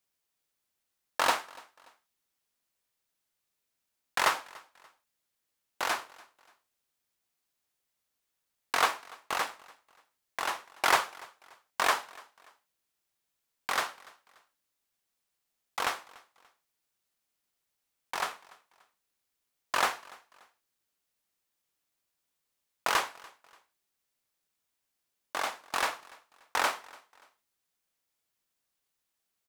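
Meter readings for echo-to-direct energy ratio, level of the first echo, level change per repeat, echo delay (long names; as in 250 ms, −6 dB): −23.0 dB, −23.5 dB, −9.0 dB, 290 ms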